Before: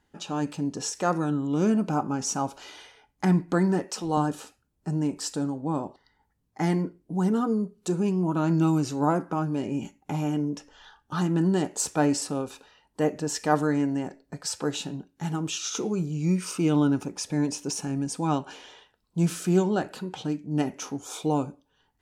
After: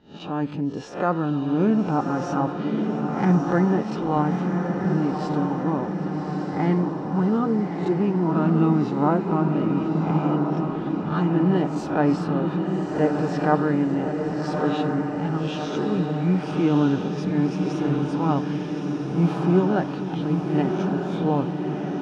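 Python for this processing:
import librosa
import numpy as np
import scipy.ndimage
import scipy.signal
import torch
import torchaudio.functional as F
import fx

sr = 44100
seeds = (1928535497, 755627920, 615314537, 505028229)

y = fx.spec_swells(x, sr, rise_s=0.37)
y = fx.air_absorb(y, sr, metres=350.0)
y = fx.echo_diffused(y, sr, ms=1208, feedback_pct=63, wet_db=-4)
y = y * 10.0 ** (3.0 / 20.0)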